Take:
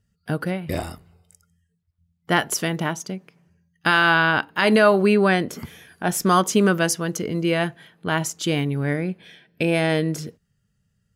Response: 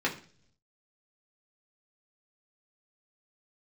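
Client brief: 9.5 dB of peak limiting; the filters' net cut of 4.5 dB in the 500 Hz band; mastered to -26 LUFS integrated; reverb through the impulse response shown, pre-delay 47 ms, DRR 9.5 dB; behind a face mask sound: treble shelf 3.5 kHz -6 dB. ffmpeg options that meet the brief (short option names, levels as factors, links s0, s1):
-filter_complex "[0:a]equalizer=f=500:t=o:g=-6,alimiter=limit=0.178:level=0:latency=1,asplit=2[s0][s1];[1:a]atrim=start_sample=2205,adelay=47[s2];[s1][s2]afir=irnorm=-1:irlink=0,volume=0.112[s3];[s0][s3]amix=inputs=2:normalize=0,highshelf=f=3500:g=-6,volume=1.12"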